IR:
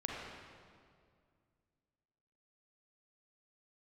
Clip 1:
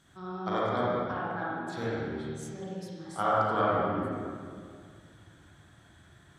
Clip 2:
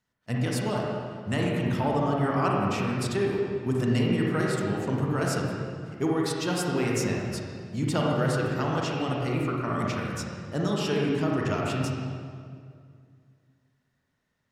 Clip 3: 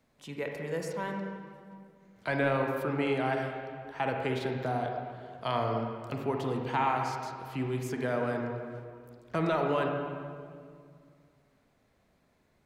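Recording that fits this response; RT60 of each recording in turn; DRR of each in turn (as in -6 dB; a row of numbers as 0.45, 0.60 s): 2; 2.1, 2.1, 2.2 s; -8.0, -3.0, 1.5 dB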